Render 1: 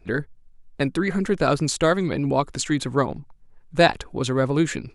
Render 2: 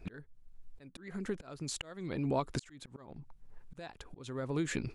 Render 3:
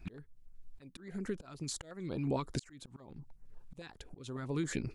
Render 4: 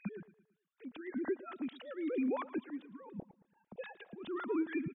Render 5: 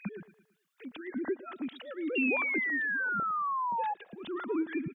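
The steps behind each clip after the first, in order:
compression 16:1, threshold -27 dBFS, peak gain reduction 17.5 dB; slow attack 568 ms
step-sequenced notch 11 Hz 490–3400 Hz
formants replaced by sine waves; compression, threshold -37 dBFS, peak gain reduction 11 dB; feedback delay 112 ms, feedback 44%, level -18.5 dB; trim +5.5 dB
painted sound fall, 2.15–3.94 s, 820–2800 Hz -34 dBFS; tape noise reduction on one side only encoder only; trim +2.5 dB

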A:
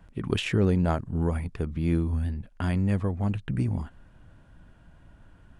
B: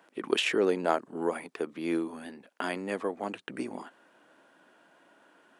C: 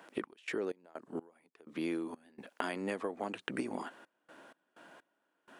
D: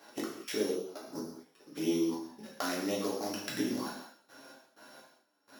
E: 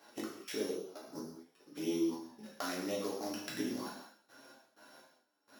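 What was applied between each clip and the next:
high-pass 320 Hz 24 dB/octave; trim +3 dB
compression 16:1, threshold -37 dBFS, peak gain reduction 18.5 dB; trance gate "x.x.x..xx.xxxxxx" 63 bpm -24 dB; trim +5 dB
sorted samples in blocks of 8 samples; touch-sensitive flanger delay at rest 10.7 ms, full sweep at -32 dBFS; reverberation, pre-delay 3 ms, DRR -5 dB
flange 0.45 Hz, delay 8.1 ms, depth 5.4 ms, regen +69%

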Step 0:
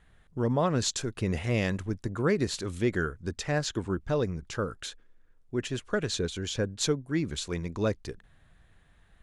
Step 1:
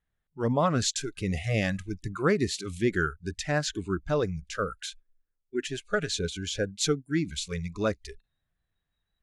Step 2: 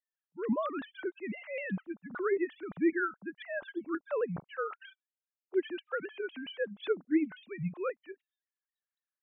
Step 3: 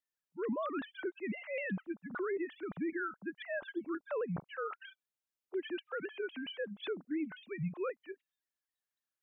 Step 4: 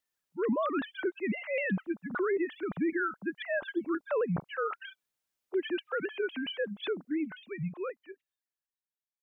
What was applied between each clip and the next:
spectral noise reduction 23 dB; dynamic bell 1.3 kHz, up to +4 dB, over -44 dBFS, Q 2.4; trim +1.5 dB
formants replaced by sine waves; vibrato with a chosen wave saw down 3.8 Hz, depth 100 cents; trim -5.5 dB
peak limiter -29.5 dBFS, peak gain reduction 11.5 dB
fade out at the end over 2.74 s; trim +6.5 dB

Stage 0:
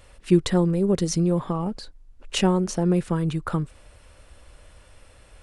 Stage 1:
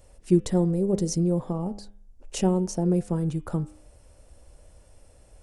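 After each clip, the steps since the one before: high-order bell 2.1 kHz -10 dB 2.3 oct; de-hum 101.8 Hz, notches 36; trim -2 dB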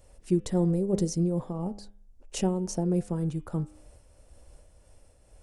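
random flutter of the level, depth 60%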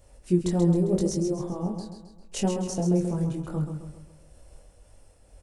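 chorus 0.8 Hz, delay 20 ms, depth 3.4 ms; feedback delay 133 ms, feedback 46%, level -7 dB; trim +4.5 dB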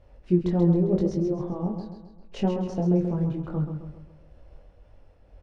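distance through air 280 m; trim +1.5 dB

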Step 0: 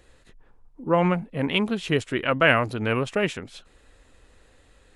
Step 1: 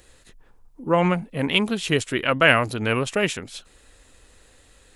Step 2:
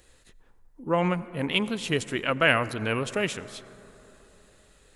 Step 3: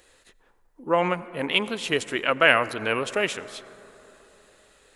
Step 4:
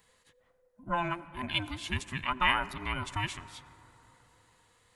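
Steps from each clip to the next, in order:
treble shelf 4.3 kHz +11.5 dB; trim +1 dB
reverberation RT60 3.6 s, pre-delay 72 ms, DRR 16 dB; trim -5 dB
tone controls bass -12 dB, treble -3 dB; trim +4 dB
every band turned upside down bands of 500 Hz; trim -8.5 dB

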